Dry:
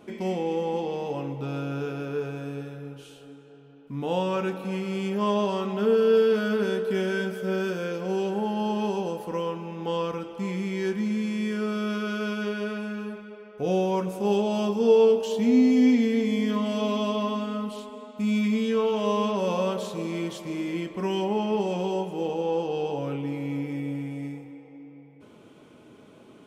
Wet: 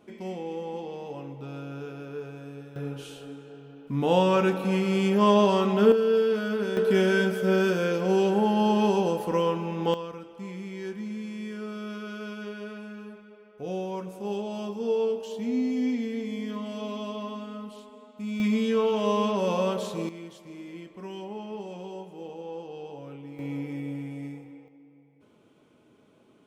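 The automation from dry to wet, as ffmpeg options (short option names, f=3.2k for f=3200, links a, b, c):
-af "asetnsamples=n=441:p=0,asendcmd='2.76 volume volume 5dB;5.92 volume volume -3dB;6.77 volume volume 4.5dB;9.94 volume volume -8dB;18.4 volume volume 0dB;20.09 volume volume -11.5dB;23.39 volume volume -3dB;24.68 volume volume -9dB',volume=-7dB"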